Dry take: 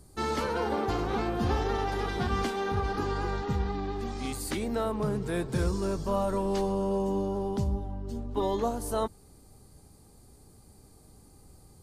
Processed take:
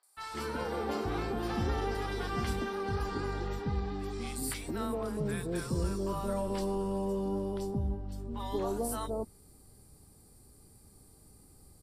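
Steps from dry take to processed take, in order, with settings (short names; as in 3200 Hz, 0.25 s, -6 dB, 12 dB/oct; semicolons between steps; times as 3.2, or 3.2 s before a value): high shelf 3900 Hz +5.5 dB; notch 6500 Hz, Q 6.5; three bands offset in time mids, highs, lows 30/170 ms, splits 760/3700 Hz; AGC gain up to 4 dB; gain -7.5 dB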